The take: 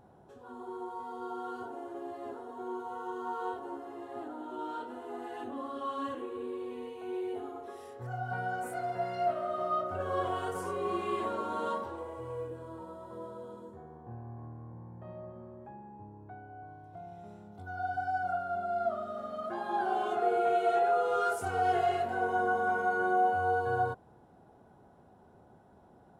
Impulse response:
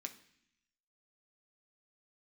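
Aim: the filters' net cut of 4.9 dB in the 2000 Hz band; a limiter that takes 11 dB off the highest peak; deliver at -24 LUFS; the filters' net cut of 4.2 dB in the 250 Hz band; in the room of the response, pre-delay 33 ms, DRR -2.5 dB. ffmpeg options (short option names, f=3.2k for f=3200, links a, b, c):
-filter_complex "[0:a]equalizer=f=250:t=o:g=-7,equalizer=f=2k:t=o:g=-8.5,alimiter=level_in=7dB:limit=-24dB:level=0:latency=1,volume=-7dB,asplit=2[a][b];[1:a]atrim=start_sample=2205,adelay=33[c];[b][c]afir=irnorm=-1:irlink=0,volume=6dB[d];[a][d]amix=inputs=2:normalize=0,volume=13.5dB"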